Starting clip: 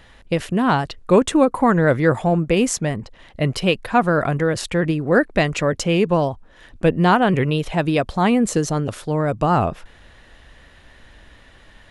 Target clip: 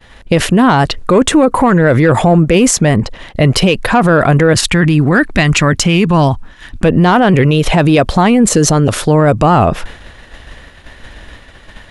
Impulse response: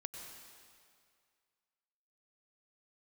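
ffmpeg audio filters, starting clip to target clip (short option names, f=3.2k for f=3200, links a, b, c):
-filter_complex "[0:a]agate=range=-33dB:threshold=-40dB:ratio=3:detection=peak,asettb=1/sr,asplit=3[a][b][c];[a]atrim=end=4.534[d];[b]atrim=start=4.53:end=6.85,asetpts=PTS-STARTPTS,afade=t=in:d=0.004:c=qsin,afade=t=out:st=2.316:d=0.004:c=qsin,equalizer=f=510:t=o:w=0.96:g=-11.5[e];[c]atrim=start=6.846[f];[d][e]acrossfade=d=0.004:c1=hsin:c2=qsin[g];[g][f]acrossfade=d=0.004:c1=qsin:c2=hsin,acontrast=35,alimiter=level_in=13dB:limit=-1dB:release=50:level=0:latency=1,volume=-1dB"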